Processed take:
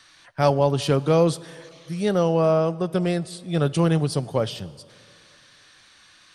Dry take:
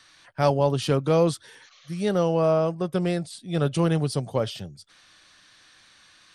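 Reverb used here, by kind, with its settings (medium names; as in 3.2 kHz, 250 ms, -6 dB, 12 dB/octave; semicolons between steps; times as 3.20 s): plate-style reverb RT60 2.5 s, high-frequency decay 0.95×, DRR 19 dB; trim +2 dB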